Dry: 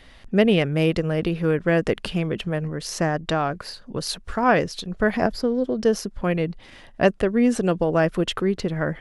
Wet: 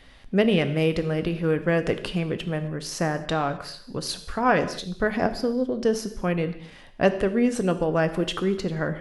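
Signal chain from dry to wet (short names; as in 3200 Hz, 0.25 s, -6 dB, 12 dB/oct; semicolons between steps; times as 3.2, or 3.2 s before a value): non-linear reverb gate 0.29 s falling, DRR 9 dB; gain -2.5 dB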